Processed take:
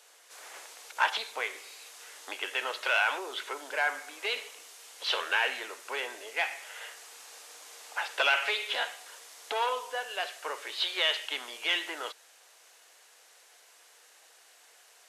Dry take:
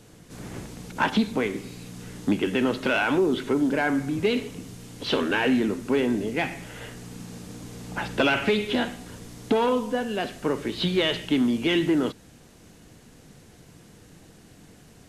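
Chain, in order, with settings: Bessel high-pass 900 Hz, order 6

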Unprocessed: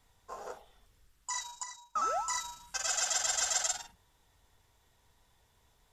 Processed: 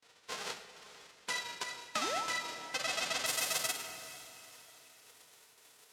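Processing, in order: spectral whitening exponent 0.1; gate with hold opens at -57 dBFS; LPF 5200 Hz 12 dB/oct, from 3.26 s 12000 Hz; shoebox room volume 840 m³, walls mixed, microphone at 0.46 m; compressor 2.5:1, threshold -43 dBFS, peak gain reduction 10.5 dB; HPF 160 Hz 12 dB/oct; diffused feedback echo 0.481 s, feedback 41%, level -14.5 dB; gain +7.5 dB

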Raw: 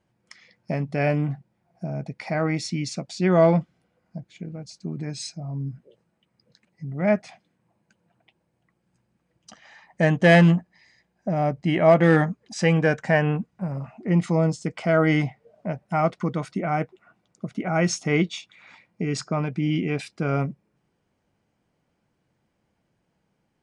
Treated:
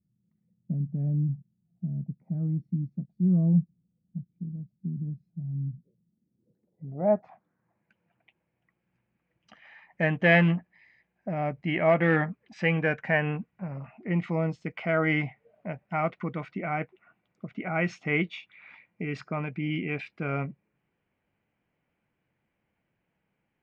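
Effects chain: low-pass sweep 180 Hz -> 2400 Hz, 5.98–7.93; gain -7 dB

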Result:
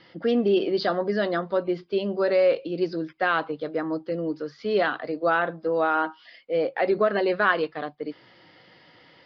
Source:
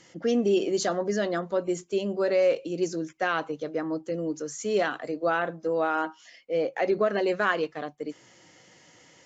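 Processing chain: rippled Chebyshev low-pass 5000 Hz, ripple 3 dB; gain +4.5 dB

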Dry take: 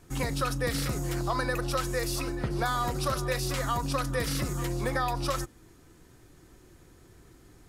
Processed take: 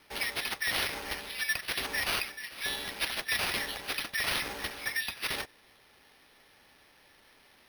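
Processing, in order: Chebyshev high-pass 1700 Hz, order 10; careless resampling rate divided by 6×, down none, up hold; gain +5.5 dB

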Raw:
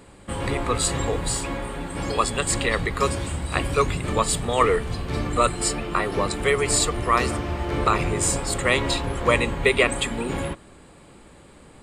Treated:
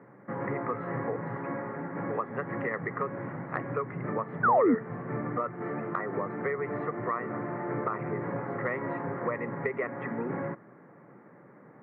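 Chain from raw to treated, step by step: Chebyshev band-pass 120–2000 Hz, order 5; compressor 6:1, threshold -25 dBFS, peak gain reduction 11.5 dB; painted sound fall, 4.43–4.75, 210–1600 Hz -19 dBFS; gain -3 dB

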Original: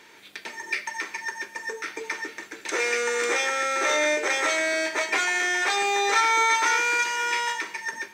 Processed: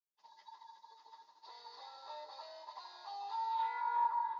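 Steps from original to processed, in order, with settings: nonlinear frequency compression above 1400 Hz 1.5:1; gate -42 dBFS, range -46 dB; EQ curve 180 Hz 0 dB, 270 Hz -13 dB, 400 Hz -15 dB, 970 Hz +7 dB, 1500 Hz -28 dB, 3000 Hz -29 dB, 5000 Hz -13 dB; band-pass sweep 5000 Hz -> 1400 Hz, 6.42–7.18; air absorption 83 m; echo with dull and thin repeats by turns 0.328 s, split 2200 Hz, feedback 75%, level -11.5 dB; plain phase-vocoder stretch 0.54×; gain +7 dB

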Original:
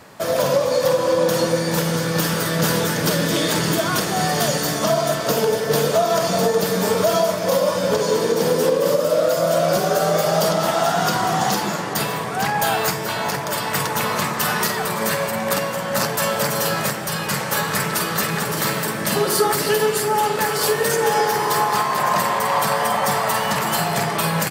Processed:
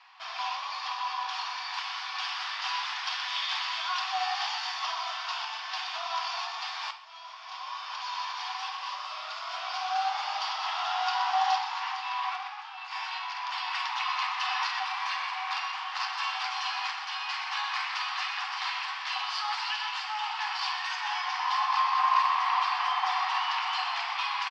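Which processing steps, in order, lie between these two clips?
Chebyshev low-pass 5200 Hz, order 4; 11.58–13.38 negative-ratio compressor -27 dBFS, ratio -0.5; rippled Chebyshev high-pass 730 Hz, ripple 9 dB; frequency-shifting echo 0.124 s, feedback 63%, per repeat +59 Hz, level -9.5 dB; 6.91–8.26 fade in; reverb RT60 0.85 s, pre-delay 6 ms, DRR 6 dB; gain -3.5 dB

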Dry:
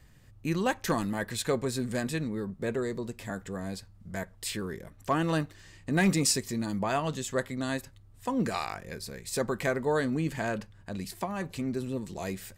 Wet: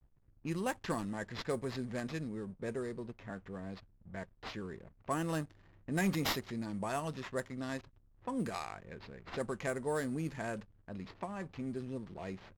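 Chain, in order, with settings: sample-rate reducer 9000 Hz, jitter 0%; backlash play -48 dBFS; low-pass opened by the level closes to 2000 Hz, open at -23 dBFS; gain -7.5 dB

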